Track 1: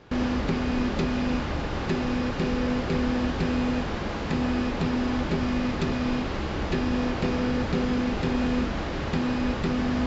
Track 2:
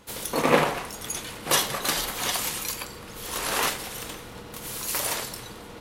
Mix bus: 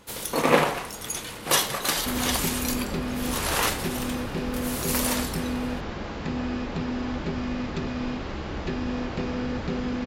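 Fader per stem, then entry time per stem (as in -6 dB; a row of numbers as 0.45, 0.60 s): -3.5, +0.5 dB; 1.95, 0.00 s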